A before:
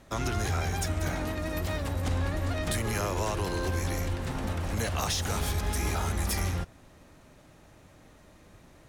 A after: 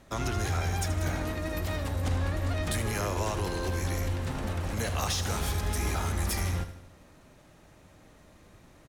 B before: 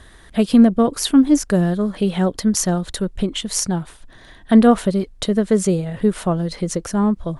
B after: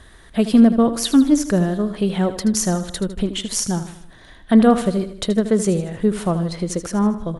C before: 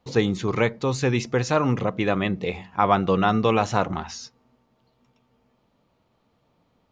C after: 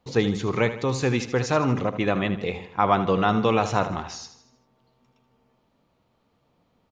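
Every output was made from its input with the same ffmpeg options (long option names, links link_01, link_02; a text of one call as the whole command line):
ffmpeg -i in.wav -af "aecho=1:1:78|156|234|312|390:0.251|0.126|0.0628|0.0314|0.0157,volume=-1dB" out.wav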